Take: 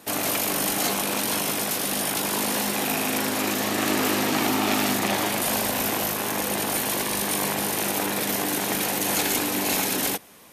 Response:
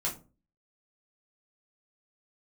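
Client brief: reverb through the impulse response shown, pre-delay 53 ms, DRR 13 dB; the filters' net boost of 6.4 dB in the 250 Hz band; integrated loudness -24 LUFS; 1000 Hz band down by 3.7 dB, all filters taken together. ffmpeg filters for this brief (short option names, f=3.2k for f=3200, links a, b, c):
-filter_complex "[0:a]equalizer=f=250:t=o:g=8,equalizer=f=1k:t=o:g=-5.5,asplit=2[a][b];[1:a]atrim=start_sample=2205,adelay=53[c];[b][c]afir=irnorm=-1:irlink=0,volume=-17.5dB[d];[a][d]amix=inputs=2:normalize=0,volume=-2dB"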